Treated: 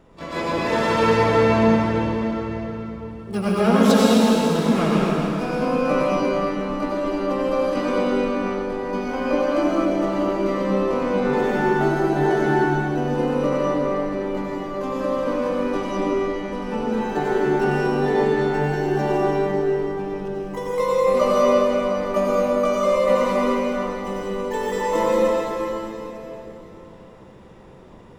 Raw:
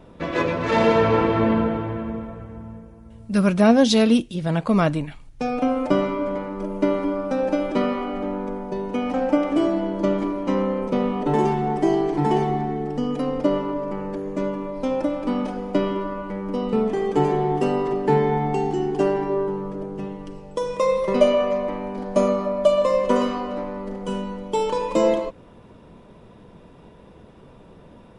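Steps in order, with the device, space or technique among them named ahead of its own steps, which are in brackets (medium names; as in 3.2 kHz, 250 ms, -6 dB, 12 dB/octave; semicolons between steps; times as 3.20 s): shimmer-style reverb (harmony voices +12 st -6 dB; reverberation RT60 3.6 s, pre-delay 79 ms, DRR -6 dB); trim -7 dB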